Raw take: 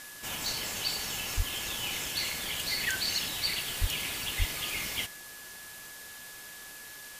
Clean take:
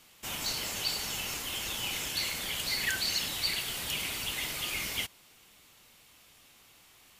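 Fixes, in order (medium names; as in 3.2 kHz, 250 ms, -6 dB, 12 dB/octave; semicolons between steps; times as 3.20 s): band-stop 1.7 kHz, Q 30; 1.36–1.48 s: high-pass 140 Hz 24 dB/octave; 3.80–3.92 s: high-pass 140 Hz 24 dB/octave; 4.38–4.50 s: high-pass 140 Hz 24 dB/octave; noise reduction 13 dB, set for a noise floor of -46 dBFS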